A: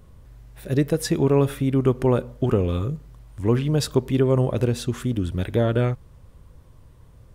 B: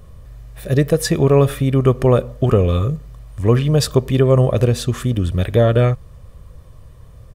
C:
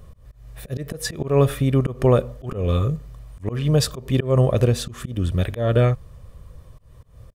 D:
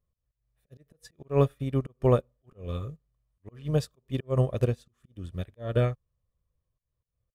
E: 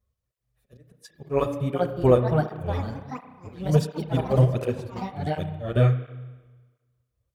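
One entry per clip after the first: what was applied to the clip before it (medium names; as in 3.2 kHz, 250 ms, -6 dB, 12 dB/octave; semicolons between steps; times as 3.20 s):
comb 1.7 ms, depth 40%; trim +6 dB
slow attack 180 ms; trim -2.5 dB
upward expansion 2.5:1, over -34 dBFS; trim -4 dB
ever faster or slower copies 696 ms, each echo +4 st, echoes 3, each echo -6 dB; spring tank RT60 1.3 s, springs 32 ms, chirp 75 ms, DRR 8.5 dB; cancelling through-zero flanger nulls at 1.4 Hz, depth 7.6 ms; trim +6 dB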